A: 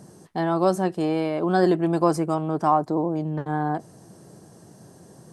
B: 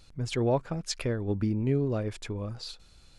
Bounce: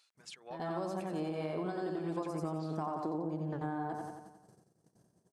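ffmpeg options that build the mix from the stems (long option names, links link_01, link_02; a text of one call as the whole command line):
ffmpeg -i stem1.wav -i stem2.wav -filter_complex "[0:a]agate=range=-36dB:threshold=-44dB:ratio=16:detection=peak,acompressor=threshold=-21dB:ratio=6,adelay=150,volume=-5.5dB,asplit=2[link_01][link_02];[link_02]volume=-6dB[link_03];[1:a]highpass=1100,alimiter=level_in=2.5dB:limit=-24dB:level=0:latency=1:release=378,volume=-2.5dB,tremolo=f=3.9:d=0.69,volume=-7dB,asplit=2[link_04][link_05];[link_05]apad=whole_len=241516[link_06];[link_01][link_06]sidechaincompress=threshold=-59dB:ratio=8:attack=26:release=188[link_07];[link_03]aecho=0:1:89|178|267|356|445|534|623|712:1|0.55|0.303|0.166|0.0915|0.0503|0.0277|0.0152[link_08];[link_07][link_04][link_08]amix=inputs=3:normalize=0,acompressor=threshold=-33dB:ratio=6" out.wav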